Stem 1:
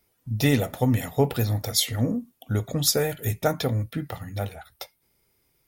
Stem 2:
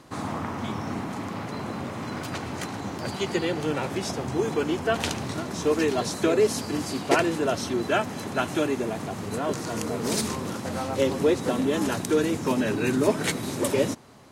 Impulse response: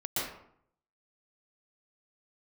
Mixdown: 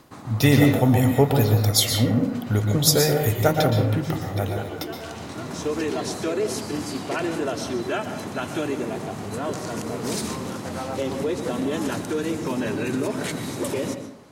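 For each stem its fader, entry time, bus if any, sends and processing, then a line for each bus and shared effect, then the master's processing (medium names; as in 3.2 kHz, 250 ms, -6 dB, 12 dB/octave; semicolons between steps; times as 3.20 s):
+1.0 dB, 0.00 s, send -7 dB, none
-1.5 dB, 0.00 s, send -14 dB, peak limiter -17 dBFS, peak gain reduction 10.5 dB; auto duck -16 dB, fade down 0.25 s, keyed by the first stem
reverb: on, RT60 0.65 s, pre-delay 113 ms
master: none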